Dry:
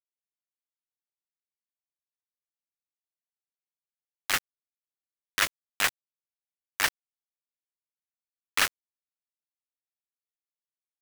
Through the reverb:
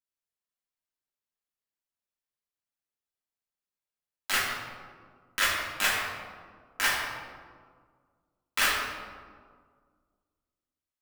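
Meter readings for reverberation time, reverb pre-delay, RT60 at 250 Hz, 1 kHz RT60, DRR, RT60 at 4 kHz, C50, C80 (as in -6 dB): 1.8 s, 3 ms, 2.2 s, 1.7 s, -6.5 dB, 0.90 s, 0.0 dB, 2.5 dB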